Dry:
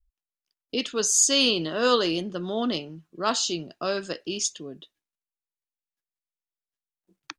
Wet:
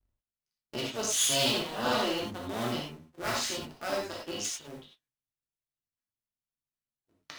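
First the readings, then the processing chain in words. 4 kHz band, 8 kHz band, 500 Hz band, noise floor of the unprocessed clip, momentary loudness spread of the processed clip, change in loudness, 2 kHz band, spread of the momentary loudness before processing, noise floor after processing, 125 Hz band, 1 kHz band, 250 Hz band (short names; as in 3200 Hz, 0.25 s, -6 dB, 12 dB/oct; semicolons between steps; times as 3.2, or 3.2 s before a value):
-5.0 dB, -7.5 dB, -7.0 dB, under -85 dBFS, 14 LU, -6.0 dB, -3.5 dB, 14 LU, under -85 dBFS, -2.0 dB, -3.5 dB, -7.5 dB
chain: cycle switcher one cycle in 2, muted; non-linear reverb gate 0.12 s flat, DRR -3 dB; flange 0.48 Hz, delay 3 ms, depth 3.7 ms, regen -69%; gain -3.5 dB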